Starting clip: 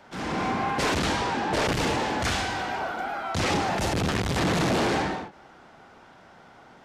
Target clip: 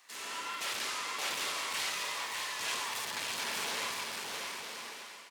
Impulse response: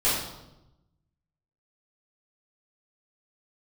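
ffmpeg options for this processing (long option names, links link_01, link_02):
-filter_complex "[0:a]acrossover=split=3200[link_01][link_02];[link_02]acompressor=threshold=-43dB:ratio=4:attack=1:release=60[link_03];[link_01][link_03]amix=inputs=2:normalize=0,aderivative,asetrate=56889,aresample=44100,aecho=1:1:600|960|1176|1306|1383:0.631|0.398|0.251|0.158|0.1,asplit=2[link_04][link_05];[1:a]atrim=start_sample=2205,asetrate=42777,aresample=44100[link_06];[link_05][link_06]afir=irnorm=-1:irlink=0,volume=-20dB[link_07];[link_04][link_07]amix=inputs=2:normalize=0,volume=3dB"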